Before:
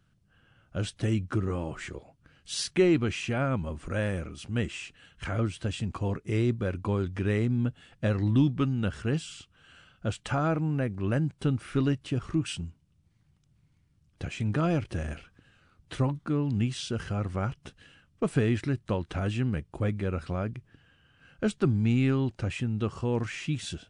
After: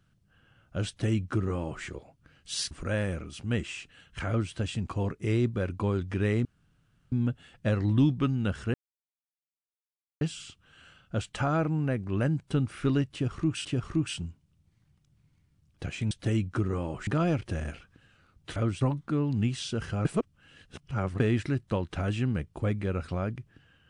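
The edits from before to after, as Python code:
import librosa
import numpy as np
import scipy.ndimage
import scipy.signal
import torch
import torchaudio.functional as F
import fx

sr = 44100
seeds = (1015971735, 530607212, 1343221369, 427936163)

y = fx.edit(x, sr, fx.duplicate(start_s=0.88, length_s=0.96, to_s=14.5),
    fx.cut(start_s=2.71, length_s=1.05),
    fx.duplicate(start_s=5.33, length_s=0.25, to_s=15.99),
    fx.insert_room_tone(at_s=7.5, length_s=0.67),
    fx.insert_silence(at_s=9.12, length_s=1.47),
    fx.repeat(start_s=12.04, length_s=0.52, count=2),
    fx.reverse_span(start_s=17.23, length_s=1.15), tone=tone)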